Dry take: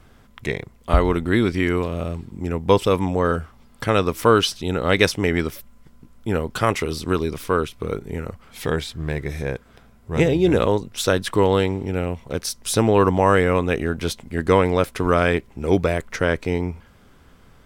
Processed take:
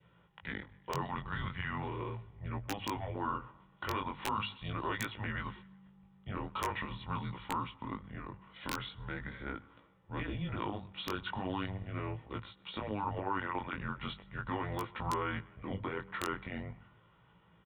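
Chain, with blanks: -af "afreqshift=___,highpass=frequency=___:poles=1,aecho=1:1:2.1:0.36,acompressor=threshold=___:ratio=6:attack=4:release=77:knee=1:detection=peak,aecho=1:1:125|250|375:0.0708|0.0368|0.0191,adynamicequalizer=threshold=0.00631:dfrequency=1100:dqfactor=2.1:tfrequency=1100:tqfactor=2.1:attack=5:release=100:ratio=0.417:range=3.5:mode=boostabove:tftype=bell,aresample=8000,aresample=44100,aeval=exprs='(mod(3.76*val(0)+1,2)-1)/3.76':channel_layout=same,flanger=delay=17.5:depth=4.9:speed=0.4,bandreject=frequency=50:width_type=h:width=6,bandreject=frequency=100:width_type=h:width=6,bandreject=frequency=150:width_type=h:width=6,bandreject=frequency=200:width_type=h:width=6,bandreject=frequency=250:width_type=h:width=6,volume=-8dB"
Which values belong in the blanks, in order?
-200, 130, -23dB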